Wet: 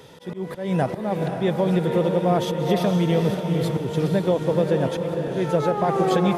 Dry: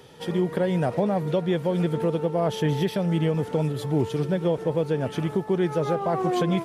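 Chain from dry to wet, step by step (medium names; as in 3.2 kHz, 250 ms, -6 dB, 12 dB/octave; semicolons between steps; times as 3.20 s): slow attack 220 ms; echo that smears into a reverb 513 ms, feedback 43%, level -5 dB; speed mistake 24 fps film run at 25 fps; trim +3 dB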